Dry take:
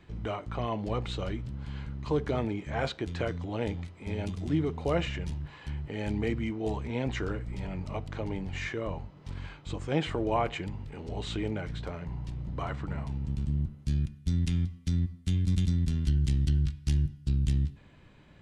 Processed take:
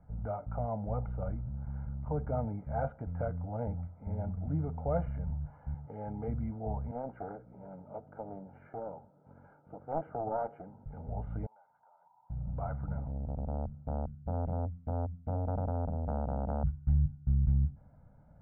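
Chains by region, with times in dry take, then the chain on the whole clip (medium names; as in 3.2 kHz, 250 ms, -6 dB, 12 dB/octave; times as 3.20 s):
5.74–6.28 s: high-pass 150 Hz + comb 2.4 ms, depth 34%
6.91–10.86 s: cabinet simulation 300–2700 Hz, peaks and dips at 360 Hz +10 dB, 720 Hz -5 dB, 1.1 kHz -7 dB, 2 kHz -9 dB + loudspeaker Doppler distortion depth 0.66 ms
11.46–12.30 s: ladder band-pass 970 Hz, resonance 80% + compression 5:1, threshold -57 dBFS
12.98–16.64 s: peaking EQ 100 Hz +3 dB 1.6 oct + transformer saturation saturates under 680 Hz
whole clip: inverse Chebyshev low-pass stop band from 3.9 kHz, stop band 60 dB; comb 1.4 ms, depth 93%; trim -5.5 dB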